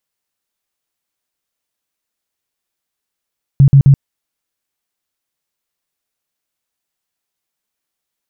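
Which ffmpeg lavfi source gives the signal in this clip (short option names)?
-f lavfi -i "aevalsrc='0.75*sin(2*PI*138*mod(t,0.13))*lt(mod(t,0.13),11/138)':d=0.39:s=44100"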